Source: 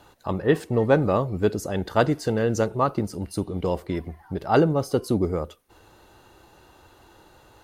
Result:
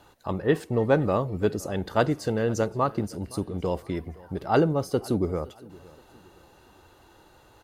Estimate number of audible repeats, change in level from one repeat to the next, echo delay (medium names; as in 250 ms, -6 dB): 2, -9.0 dB, 517 ms